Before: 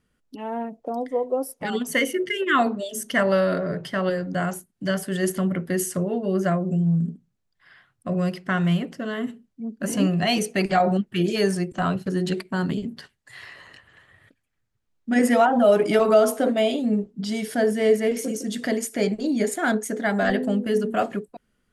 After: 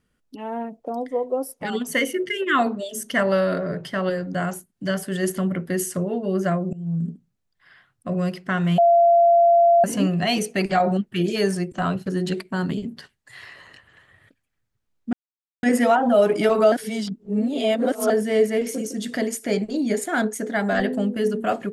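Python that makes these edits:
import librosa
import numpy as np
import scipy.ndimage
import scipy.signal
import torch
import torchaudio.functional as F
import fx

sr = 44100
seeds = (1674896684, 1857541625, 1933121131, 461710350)

y = fx.edit(x, sr, fx.fade_in_from(start_s=6.73, length_s=0.35, floor_db=-22.0),
    fx.bleep(start_s=8.78, length_s=1.06, hz=685.0, db=-11.5),
    fx.insert_silence(at_s=15.13, length_s=0.5),
    fx.reverse_span(start_s=16.22, length_s=1.38), tone=tone)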